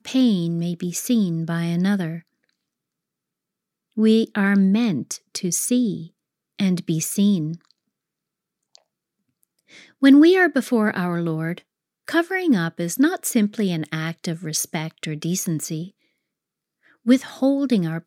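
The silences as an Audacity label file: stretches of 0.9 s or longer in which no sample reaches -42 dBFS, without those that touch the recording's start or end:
2.200000	3.970000	silence
7.710000	8.750000	silence
15.890000	17.060000	silence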